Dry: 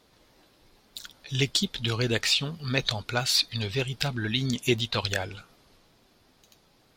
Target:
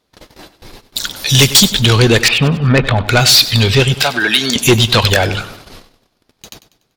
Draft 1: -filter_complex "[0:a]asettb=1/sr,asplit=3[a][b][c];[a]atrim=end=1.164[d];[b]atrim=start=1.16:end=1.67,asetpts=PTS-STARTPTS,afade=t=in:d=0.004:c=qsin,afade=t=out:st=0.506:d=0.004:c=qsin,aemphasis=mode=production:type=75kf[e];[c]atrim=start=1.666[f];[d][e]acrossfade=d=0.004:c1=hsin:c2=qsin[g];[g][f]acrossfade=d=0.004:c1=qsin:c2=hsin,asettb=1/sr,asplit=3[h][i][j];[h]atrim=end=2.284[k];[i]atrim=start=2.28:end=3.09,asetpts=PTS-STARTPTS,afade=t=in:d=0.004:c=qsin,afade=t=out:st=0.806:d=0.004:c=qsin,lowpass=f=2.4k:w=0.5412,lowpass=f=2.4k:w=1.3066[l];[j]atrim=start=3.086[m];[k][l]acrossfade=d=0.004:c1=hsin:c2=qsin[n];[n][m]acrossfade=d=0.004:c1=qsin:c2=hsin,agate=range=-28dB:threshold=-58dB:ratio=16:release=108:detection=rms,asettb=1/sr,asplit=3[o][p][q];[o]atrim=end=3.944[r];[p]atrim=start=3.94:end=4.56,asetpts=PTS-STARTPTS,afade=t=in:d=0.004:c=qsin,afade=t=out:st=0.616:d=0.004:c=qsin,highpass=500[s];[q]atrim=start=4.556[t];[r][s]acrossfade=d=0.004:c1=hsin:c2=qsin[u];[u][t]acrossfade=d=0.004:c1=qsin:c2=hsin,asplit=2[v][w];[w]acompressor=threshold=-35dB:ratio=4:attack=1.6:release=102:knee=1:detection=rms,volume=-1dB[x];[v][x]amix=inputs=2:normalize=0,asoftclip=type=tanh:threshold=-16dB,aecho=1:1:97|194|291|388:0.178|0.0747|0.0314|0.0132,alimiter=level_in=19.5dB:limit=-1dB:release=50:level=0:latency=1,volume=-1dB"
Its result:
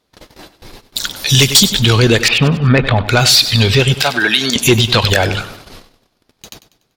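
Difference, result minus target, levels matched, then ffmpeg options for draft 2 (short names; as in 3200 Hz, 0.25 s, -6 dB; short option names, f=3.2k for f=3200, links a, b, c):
soft clip: distortion -4 dB
-filter_complex "[0:a]asettb=1/sr,asplit=3[a][b][c];[a]atrim=end=1.164[d];[b]atrim=start=1.16:end=1.67,asetpts=PTS-STARTPTS,afade=t=in:d=0.004:c=qsin,afade=t=out:st=0.506:d=0.004:c=qsin,aemphasis=mode=production:type=75kf[e];[c]atrim=start=1.666[f];[d][e]acrossfade=d=0.004:c1=hsin:c2=qsin[g];[g][f]acrossfade=d=0.004:c1=qsin:c2=hsin,asettb=1/sr,asplit=3[h][i][j];[h]atrim=end=2.284[k];[i]atrim=start=2.28:end=3.09,asetpts=PTS-STARTPTS,afade=t=in:d=0.004:c=qsin,afade=t=out:st=0.806:d=0.004:c=qsin,lowpass=f=2.4k:w=0.5412,lowpass=f=2.4k:w=1.3066[l];[j]atrim=start=3.086[m];[k][l]acrossfade=d=0.004:c1=hsin:c2=qsin[n];[n][m]acrossfade=d=0.004:c1=qsin:c2=hsin,agate=range=-28dB:threshold=-58dB:ratio=16:release=108:detection=rms,asettb=1/sr,asplit=3[o][p][q];[o]atrim=end=3.944[r];[p]atrim=start=3.94:end=4.56,asetpts=PTS-STARTPTS,afade=t=in:d=0.004:c=qsin,afade=t=out:st=0.616:d=0.004:c=qsin,highpass=500[s];[q]atrim=start=4.556[t];[r][s]acrossfade=d=0.004:c1=hsin:c2=qsin[u];[u][t]acrossfade=d=0.004:c1=qsin:c2=hsin,asplit=2[v][w];[w]acompressor=threshold=-35dB:ratio=4:attack=1.6:release=102:knee=1:detection=rms,volume=-1dB[x];[v][x]amix=inputs=2:normalize=0,asoftclip=type=tanh:threshold=-22dB,aecho=1:1:97|194|291|388:0.178|0.0747|0.0314|0.0132,alimiter=level_in=19.5dB:limit=-1dB:release=50:level=0:latency=1,volume=-1dB"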